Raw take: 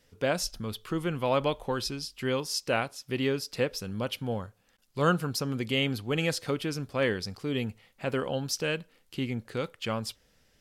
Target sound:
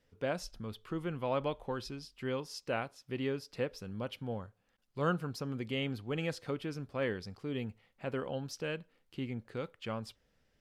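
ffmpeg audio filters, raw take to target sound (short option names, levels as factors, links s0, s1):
-af "highshelf=f=4000:g=-11,volume=0.473"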